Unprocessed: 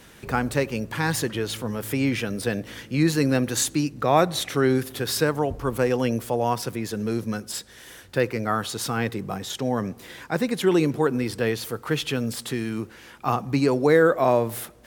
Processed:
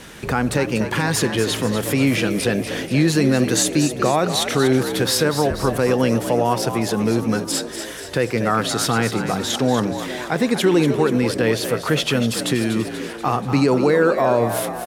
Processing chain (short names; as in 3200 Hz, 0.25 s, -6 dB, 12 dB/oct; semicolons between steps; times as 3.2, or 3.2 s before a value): LPF 12000 Hz 12 dB/oct; notches 50/100 Hz; in parallel at -1.5 dB: compressor, threshold -31 dBFS, peak gain reduction 17 dB; on the sum: limiter -12.5 dBFS, peak gain reduction 7.5 dB; frequency-shifting echo 0.241 s, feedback 57%, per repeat +59 Hz, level -9.5 dB; gain +4.5 dB